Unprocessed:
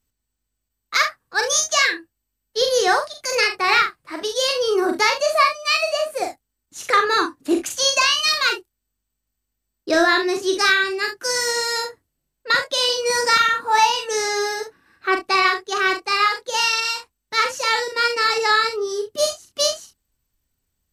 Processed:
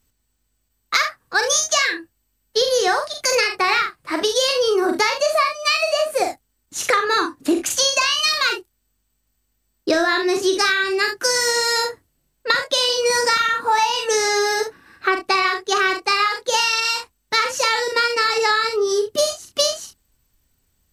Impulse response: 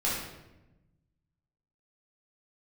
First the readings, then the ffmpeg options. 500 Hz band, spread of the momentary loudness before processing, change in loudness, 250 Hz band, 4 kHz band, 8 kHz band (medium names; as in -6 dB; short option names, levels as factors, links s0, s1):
+2.0 dB, 9 LU, +0.5 dB, +1.0 dB, +1.0 dB, +2.0 dB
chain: -af "acompressor=threshold=0.0631:ratio=6,volume=2.66"